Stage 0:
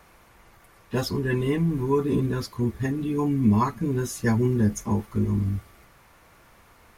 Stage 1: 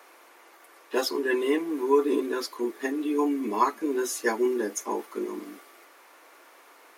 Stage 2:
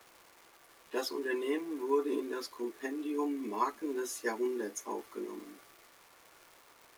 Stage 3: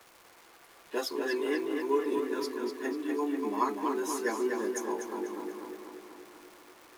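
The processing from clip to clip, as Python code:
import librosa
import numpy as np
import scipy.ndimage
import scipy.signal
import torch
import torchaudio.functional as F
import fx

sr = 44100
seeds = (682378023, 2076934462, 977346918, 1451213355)

y1 = scipy.signal.sosfilt(scipy.signal.butter(8, 290.0, 'highpass', fs=sr, output='sos'), x)
y1 = y1 * librosa.db_to_amplitude(2.5)
y2 = fx.dmg_crackle(y1, sr, seeds[0], per_s=510.0, level_db=-39.0)
y2 = y2 * librosa.db_to_amplitude(-8.5)
y3 = fx.echo_tape(y2, sr, ms=244, feedback_pct=68, wet_db=-3, lp_hz=4100.0, drive_db=22.0, wow_cents=23)
y3 = y3 * librosa.db_to_amplitude(2.0)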